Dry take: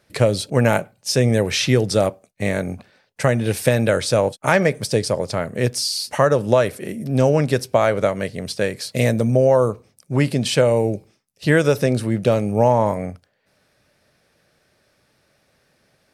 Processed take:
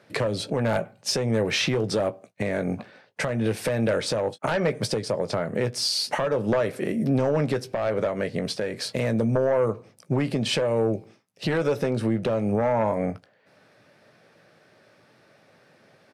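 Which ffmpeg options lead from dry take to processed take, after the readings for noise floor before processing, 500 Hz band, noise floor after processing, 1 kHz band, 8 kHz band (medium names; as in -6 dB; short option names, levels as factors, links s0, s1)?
-65 dBFS, -6.5 dB, -60 dBFS, -7.0 dB, -7.0 dB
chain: -filter_complex "[0:a]highpass=f=100:w=0.5412,highpass=f=100:w=1.3066,lowshelf=f=150:g=-6,asplit=2[s0][s1];[s1]adelay=18,volume=0.251[s2];[s0][s2]amix=inputs=2:normalize=0,aeval=exprs='0.891*sin(PI/2*2.51*val(0)/0.891)':c=same,lowpass=f=2100:p=1,acompressor=threshold=0.178:ratio=6,alimiter=limit=0.299:level=0:latency=1:release=246,volume=0.596"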